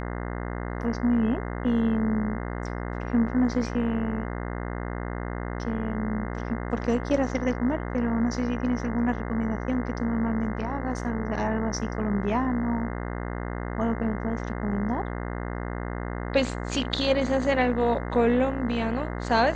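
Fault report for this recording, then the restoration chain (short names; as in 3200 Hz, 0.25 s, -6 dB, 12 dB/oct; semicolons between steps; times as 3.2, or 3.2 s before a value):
buzz 60 Hz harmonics 35 -32 dBFS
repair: de-hum 60 Hz, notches 35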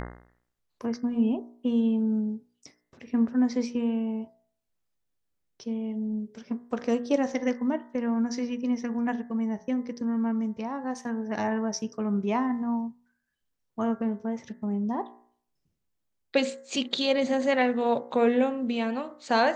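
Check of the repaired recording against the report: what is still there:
none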